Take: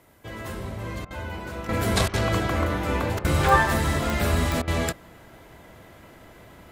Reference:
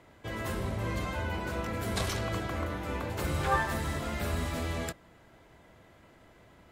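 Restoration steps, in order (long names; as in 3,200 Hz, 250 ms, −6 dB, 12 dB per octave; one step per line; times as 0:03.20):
click removal
repair the gap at 0:01.05/0:02.08/0:03.19/0:04.62, 55 ms
downward expander −41 dBFS, range −21 dB
level correction −9.5 dB, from 0:01.69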